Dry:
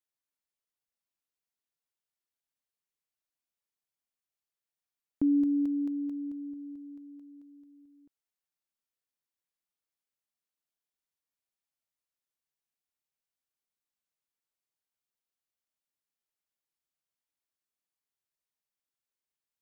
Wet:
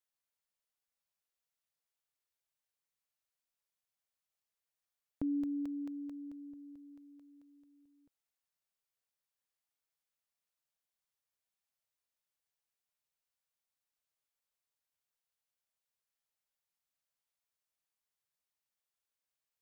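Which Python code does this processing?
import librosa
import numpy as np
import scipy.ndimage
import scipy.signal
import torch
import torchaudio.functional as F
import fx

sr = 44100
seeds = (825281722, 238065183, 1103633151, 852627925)

y = fx.curve_eq(x, sr, hz=(130.0, 330.0, 480.0), db=(0, -10, 1))
y = y * librosa.db_to_amplitude(-1.0)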